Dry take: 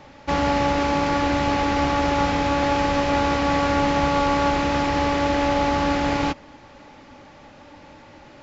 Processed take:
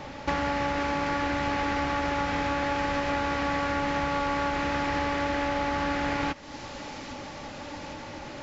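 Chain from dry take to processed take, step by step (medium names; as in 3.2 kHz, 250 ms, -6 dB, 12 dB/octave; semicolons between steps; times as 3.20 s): dynamic bell 1.7 kHz, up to +6 dB, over -38 dBFS, Q 1.3; feedback echo behind a high-pass 807 ms, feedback 69%, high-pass 5.2 kHz, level -16 dB; compression 4:1, threshold -34 dBFS, peak gain reduction 16 dB; trim +6 dB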